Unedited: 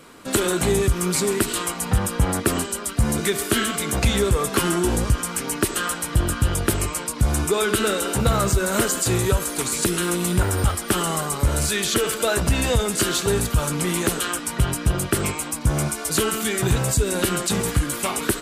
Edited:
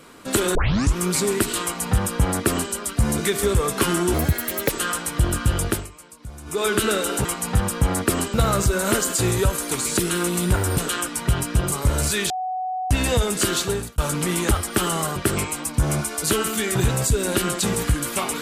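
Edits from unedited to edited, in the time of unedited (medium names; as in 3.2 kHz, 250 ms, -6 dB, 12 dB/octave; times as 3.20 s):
0.55 s: tape start 0.41 s
1.63–2.72 s: copy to 8.21 s
3.43–4.19 s: delete
4.90–5.66 s: speed 136%
6.63–7.62 s: dip -17.5 dB, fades 0.21 s
10.65–11.30 s: swap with 14.09–15.03 s
11.88–12.49 s: bleep 744 Hz -23.5 dBFS
13.18–13.56 s: fade out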